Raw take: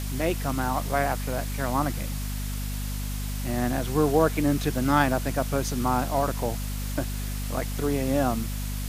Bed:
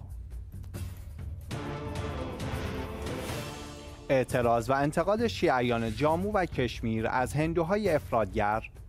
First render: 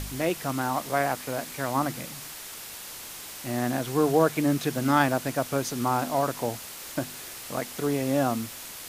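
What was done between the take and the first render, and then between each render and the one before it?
hum removal 50 Hz, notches 5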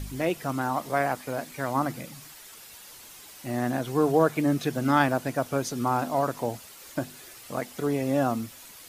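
broadband denoise 9 dB, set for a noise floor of −41 dBFS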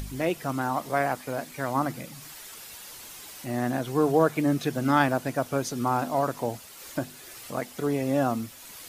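upward compression, threshold −37 dBFS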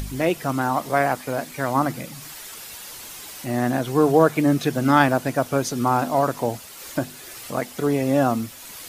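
level +5.5 dB

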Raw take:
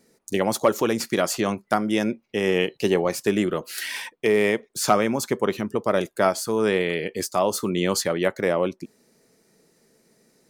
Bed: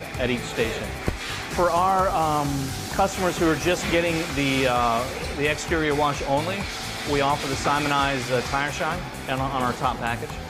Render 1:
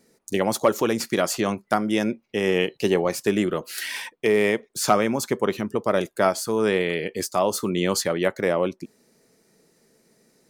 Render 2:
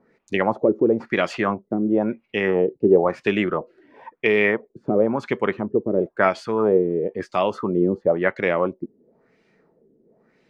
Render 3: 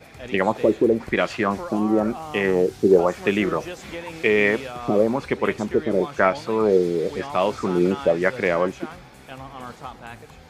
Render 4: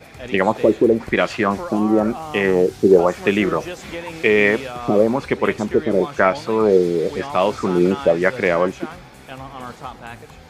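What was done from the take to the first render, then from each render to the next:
no processing that can be heard
auto-filter low-pass sine 0.98 Hz 330–2,800 Hz
mix in bed −12.5 dB
level +3.5 dB; brickwall limiter −1 dBFS, peak gain reduction 1.5 dB

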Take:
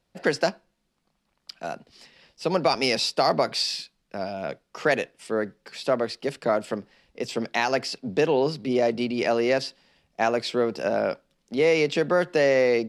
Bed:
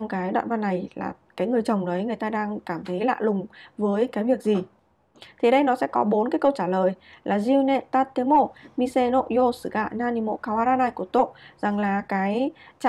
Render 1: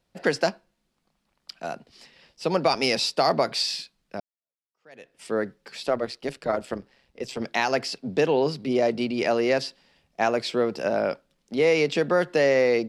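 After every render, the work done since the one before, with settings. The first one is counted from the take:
0:04.20–0:05.18: fade in exponential
0:05.86–0:07.42: amplitude modulation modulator 130 Hz, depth 45%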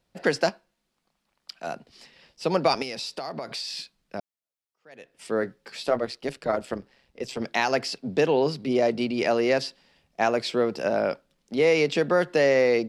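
0:00.49–0:01.67: low-shelf EQ 330 Hz −6.5 dB
0:02.82–0:03.77: downward compressor, threshold −30 dBFS
0:05.40–0:05.99: double-tracking delay 17 ms −9.5 dB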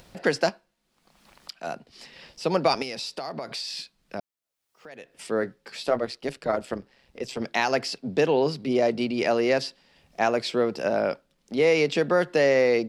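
upward compression, threshold −37 dBFS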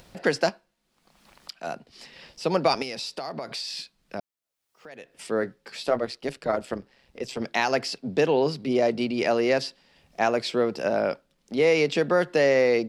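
no processing that can be heard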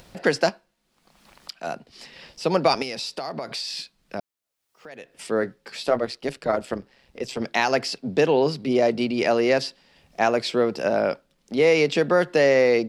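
level +2.5 dB

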